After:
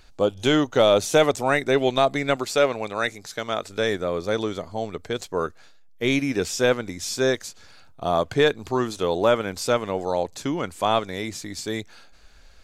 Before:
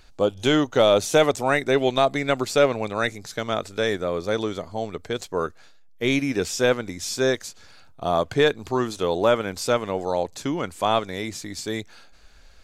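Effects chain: 2.36–3.70 s: bass shelf 270 Hz -7.5 dB

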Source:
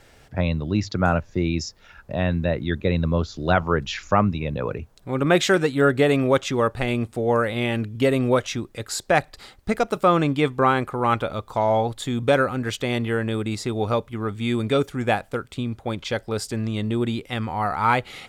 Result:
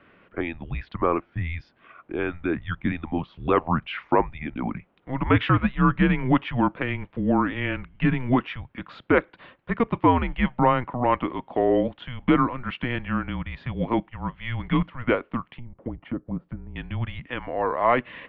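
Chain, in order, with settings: 15.45–16.76 s: low-pass that closes with the level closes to 580 Hz, closed at -24 dBFS; mistuned SSB -250 Hz 330–3100 Hz

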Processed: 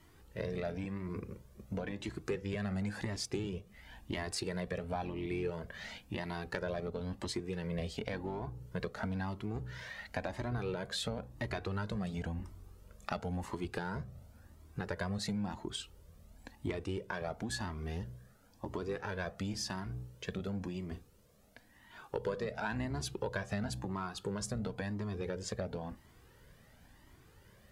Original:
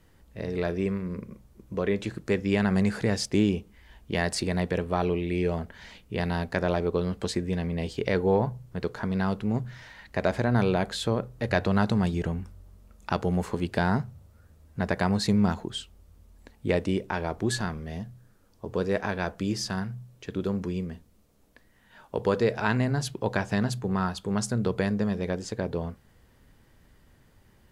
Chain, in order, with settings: octave divider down 1 oct, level -5 dB; bass shelf 79 Hz -12 dB; in parallel at -5.5 dB: one-sided clip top -23.5 dBFS; on the sum: compression 6:1, threshold -31 dBFS, peak gain reduction 14 dB; Shepard-style flanger rising 0.96 Hz; trim +1.5 dB

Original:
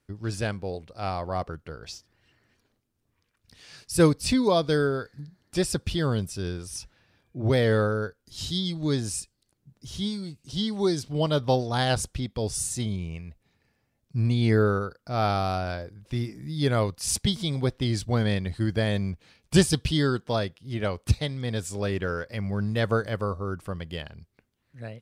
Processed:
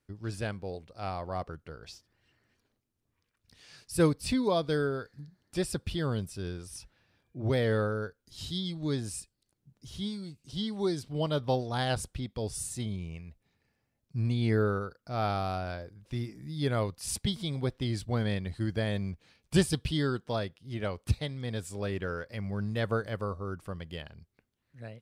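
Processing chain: dynamic bell 6.2 kHz, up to -5 dB, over -50 dBFS, Q 1.8; trim -5.5 dB

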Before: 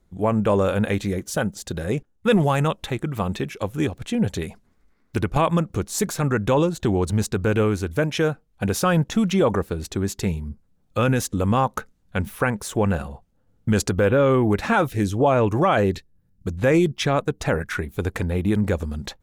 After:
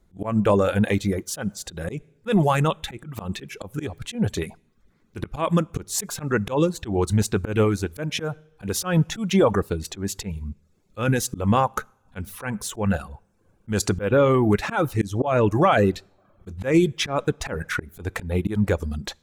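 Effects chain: two-slope reverb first 0.68 s, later 3.3 s, from -25 dB, DRR 15 dB; reverb removal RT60 0.54 s; slow attack 144 ms; trim +1.5 dB

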